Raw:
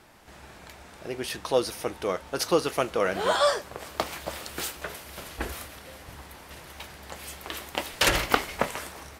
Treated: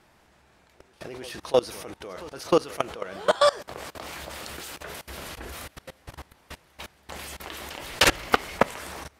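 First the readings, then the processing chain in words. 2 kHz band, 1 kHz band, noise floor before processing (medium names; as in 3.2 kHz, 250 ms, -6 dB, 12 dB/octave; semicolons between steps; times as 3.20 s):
+0.5 dB, +0.5 dB, -49 dBFS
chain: reverse echo 306 ms -17 dB; level held to a coarse grid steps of 22 dB; treble shelf 11 kHz -5.5 dB; trim +6 dB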